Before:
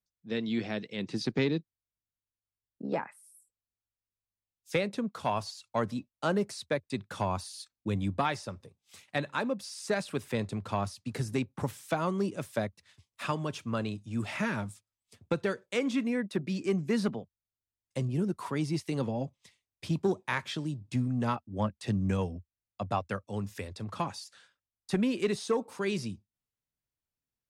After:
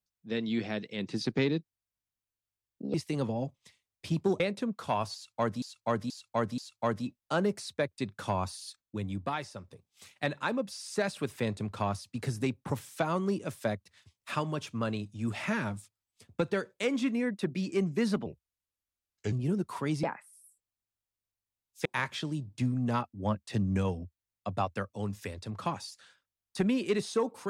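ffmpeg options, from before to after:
-filter_complex "[0:a]asplit=12[a][b][c][d][e][f][g][h][i][j][k][l];[a]atrim=end=2.942[m];[b]atrim=start=18.728:end=20.192[n];[c]atrim=start=4.758:end=5.982[o];[d]atrim=start=5.498:end=5.982[p];[e]atrim=start=5.498:end=5.982[q];[f]atrim=start=5.498:end=7.742[r];[g]atrim=start=7.738:end=8.632,asetpts=PTS-STARTPTS,volume=-4.5dB[s];[h]atrim=start=8.628:end=17.184[t];[i]atrim=start=17.18:end=18.02,asetpts=PTS-STARTPTS,asetrate=34839,aresample=44100,atrim=end_sample=46891,asetpts=PTS-STARTPTS[u];[j]atrim=start=18.016:end=18.732[v];[k]atrim=start=2.938:end=4.762[w];[l]atrim=start=20.188[x];[m][n]acrossfade=d=0.004:c1=hsin:c2=hsin[y];[y][o]acrossfade=d=0.004:c1=hsin:c2=hsin[z];[z][p]acrossfade=d=0.004:c1=hsin:c2=hsin[aa];[aa][q]acrossfade=d=0.004:c1=hsin:c2=hsin[ab];[ab][r]acrossfade=d=0.004:c1=hsin:c2=hsin[ac];[ac][s]acrossfade=d=0.004:c1=hsin:c2=hsin[ad];[ad][t]acrossfade=d=0.004:c1=hsin:c2=hsin[ae];[ae][u]acrossfade=d=0.004:c1=hsin:c2=hsin[af];[af][v]acrossfade=d=0.004:c1=hsin:c2=hsin[ag];[ag][w]acrossfade=d=0.004:c1=hsin:c2=hsin[ah];[ah][x]acrossfade=d=0.004:c1=hsin:c2=hsin"

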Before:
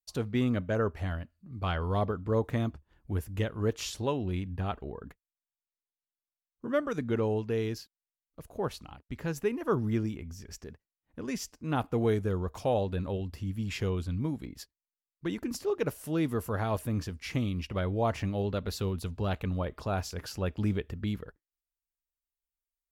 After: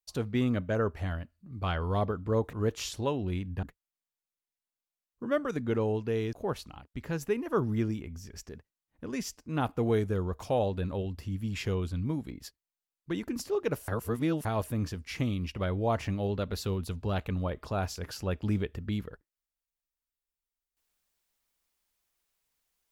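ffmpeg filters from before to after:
-filter_complex "[0:a]asplit=6[a][b][c][d][e][f];[a]atrim=end=2.532[g];[b]atrim=start=3.538:end=4.642[h];[c]atrim=start=5.048:end=7.752[i];[d]atrim=start=8.478:end=16.032[j];[e]atrim=start=16.028:end=16.602,asetpts=PTS-STARTPTS,areverse[k];[f]atrim=start=16.598[l];[g][h]acrossfade=d=0.004:c1=hsin:c2=hsin[m];[m][i]acrossfade=d=0.004:c1=hsin:c2=hsin[n];[n][j]acrossfade=d=0.004:c1=hsin:c2=hsin[o];[o][k]acrossfade=d=0.004:c1=hsin:c2=hsin[p];[p][l]acrossfade=d=0.004:c1=hsin:c2=hsin"

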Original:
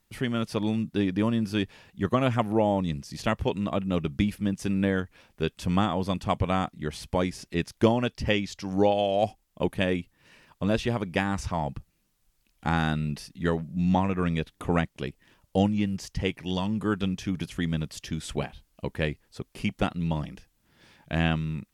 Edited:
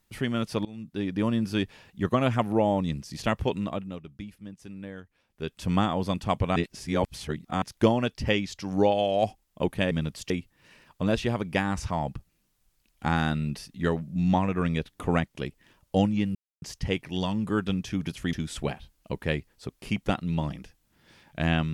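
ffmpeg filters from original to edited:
-filter_complex "[0:a]asplit=10[a][b][c][d][e][f][g][h][i][j];[a]atrim=end=0.65,asetpts=PTS-STARTPTS,afade=t=out:st=0.646:d=0.004:c=hsin:silence=0.0749894[k];[b]atrim=start=0.65:end=3.99,asetpts=PTS-STARTPTS,afade=t=in:d=0.67:silence=0.0749894,afade=t=out:st=2.9:d=0.44:silence=0.177828[l];[c]atrim=start=3.99:end=5.27,asetpts=PTS-STARTPTS,volume=-15dB[m];[d]atrim=start=5.27:end=6.562,asetpts=PTS-STARTPTS,afade=t=in:d=0.44:silence=0.177828[n];[e]atrim=start=6.558:end=7.622,asetpts=PTS-STARTPTS,areverse[o];[f]atrim=start=7.618:end=9.912[p];[g]atrim=start=17.668:end=18.062[q];[h]atrim=start=9.908:end=15.96,asetpts=PTS-STARTPTS,afade=t=out:st=6.048:d=0.004:c=hsin,apad=pad_dur=0.27[r];[i]atrim=start=15.96:end=17.672,asetpts=PTS-STARTPTS,afade=t=in:d=0.004:c=hsin[s];[j]atrim=start=18.058[t];[k][l][m][n]concat=n=4:v=0:a=1[u];[u][o]acrossfade=d=0.004:c1=hsin:c2=hsin[v];[v][p]acrossfade=d=0.004:c1=hsin:c2=hsin[w];[w][q]acrossfade=d=0.004:c1=hsin:c2=hsin[x];[r][s]concat=n=2:v=0:a=1[y];[x][y]acrossfade=d=0.004:c1=hsin:c2=hsin[z];[z][t]acrossfade=d=0.004:c1=hsin:c2=hsin"

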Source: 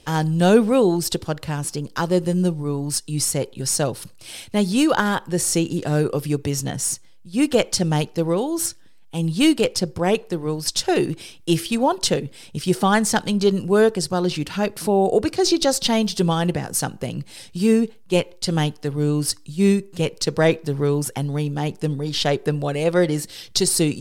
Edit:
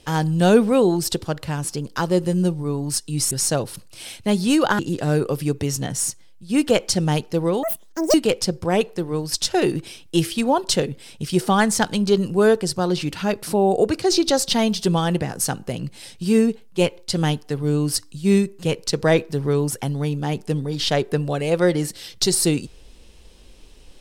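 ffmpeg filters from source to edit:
-filter_complex "[0:a]asplit=5[a][b][c][d][e];[a]atrim=end=3.312[f];[b]atrim=start=3.588:end=5.072[g];[c]atrim=start=5.628:end=8.474[h];[d]atrim=start=8.47:end=9.48,asetpts=PTS-STARTPTS,asetrate=87318,aresample=44100,atrim=end_sample=22495,asetpts=PTS-STARTPTS[i];[e]atrim=start=9.476[j];[f][g]acrossfade=d=0.004:c1=hsin:c2=hsin[k];[k][h]acrossfade=d=0.004:c1=hsin:c2=hsin[l];[l][i]acrossfade=d=0.004:c1=hsin:c2=hsin[m];[m][j]acrossfade=d=0.004:c1=hsin:c2=hsin"

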